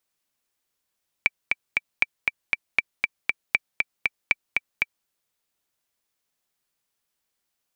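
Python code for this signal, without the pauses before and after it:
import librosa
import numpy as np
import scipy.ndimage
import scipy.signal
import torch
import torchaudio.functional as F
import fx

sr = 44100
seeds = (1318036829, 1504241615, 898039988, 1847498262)

y = fx.click_track(sr, bpm=236, beats=3, bars=5, hz=2330.0, accent_db=3.0, level_db=-4.5)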